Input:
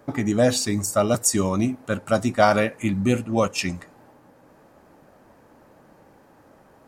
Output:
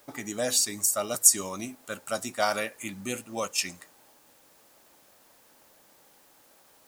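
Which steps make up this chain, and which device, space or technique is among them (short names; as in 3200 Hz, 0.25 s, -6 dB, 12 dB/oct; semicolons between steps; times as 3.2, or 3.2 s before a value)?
turntable without a phono preamp (RIAA curve recording; white noise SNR 30 dB); gain -8.5 dB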